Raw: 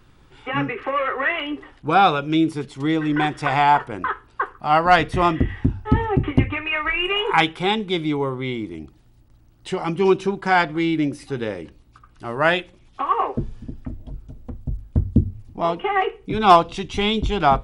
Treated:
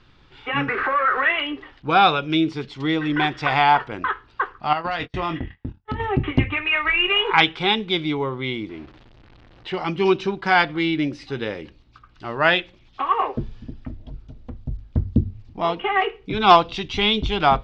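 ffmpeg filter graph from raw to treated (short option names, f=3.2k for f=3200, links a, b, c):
-filter_complex "[0:a]asettb=1/sr,asplit=3[a][b][c];[a]atrim=end=0.684[d];[b]atrim=start=0.68:end=1.23,asetpts=PTS-STARTPTS,afade=t=in:d=0.004:c=qsin,afade=t=out:st=0.546:d=0.004:c=qsin,aeval=exprs='val(0)+0.5*0.0473*sgn(val(0))':c=same,lowpass=f=1.5k:t=q:w=4.3,acompressor=threshold=-21dB:ratio=2:attack=3.2:release=140:knee=1:detection=peak[e];[c]atrim=start=1.226[f];[d][e]acrossfade=d=0.004:c1=hsin:c2=qsin[g];[g][f]acrossfade=d=0.004:c1=qsin:c2=hsin,asettb=1/sr,asplit=3[h][i][j];[h]atrim=end=4.734[k];[i]atrim=start=4.73:end=6,asetpts=PTS-STARTPTS,afade=t=in:d=0.004:c=qsin,afade=t=out:st=1.266:d=0.004:c=qsin,acompressor=threshold=-20dB:ratio=16:attack=3.2:release=140:knee=1:detection=peak,agate=range=-35dB:threshold=-28dB:ratio=16:release=100:detection=peak,asplit=2[l][m];[m]adelay=24,volume=-10dB[n];[l][n]amix=inputs=2:normalize=0,atrim=end_sample=56007[o];[j]atrim=start=5.996[p];[k][o]acrossfade=d=0.004:c1=hsin:c2=qsin[q];[q][p]acrossfade=d=0.004:c1=qsin:c2=hsin,asettb=1/sr,asplit=3[r][s][t];[r]atrim=end=8.694[u];[s]atrim=start=8.69:end=9.74,asetpts=PTS-STARTPTS,afade=t=in:d=0.004:c=qsin,afade=t=out:st=1.046:d=0.004:c=qsin,aeval=exprs='val(0)+0.5*0.01*sgn(val(0))':c=same,bass=f=250:g=-5,treble=f=4k:g=-14[v];[t]atrim=start=9.736[w];[u][v]acrossfade=d=0.004:c1=hsin:c2=qsin[x];[x][w]acrossfade=d=0.004:c1=qsin:c2=hsin,lowpass=f=4.7k:w=0.5412,lowpass=f=4.7k:w=1.3066,highshelf=f=2.1k:g=9.5,volume=-2dB"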